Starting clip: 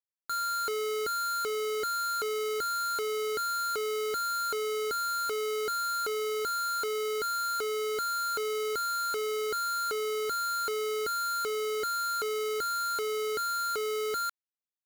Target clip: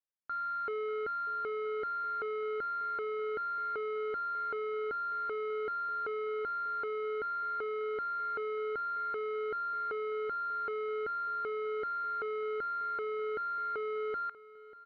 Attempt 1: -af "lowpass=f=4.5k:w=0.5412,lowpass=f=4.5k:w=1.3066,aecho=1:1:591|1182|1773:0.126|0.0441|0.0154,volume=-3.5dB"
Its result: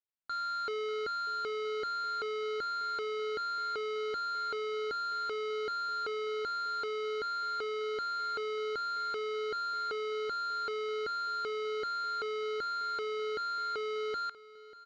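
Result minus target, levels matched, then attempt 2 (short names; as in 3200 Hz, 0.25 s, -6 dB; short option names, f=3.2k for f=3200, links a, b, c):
4000 Hz band +16.0 dB
-af "lowpass=f=2.2k:w=0.5412,lowpass=f=2.2k:w=1.3066,aecho=1:1:591|1182|1773:0.126|0.0441|0.0154,volume=-3.5dB"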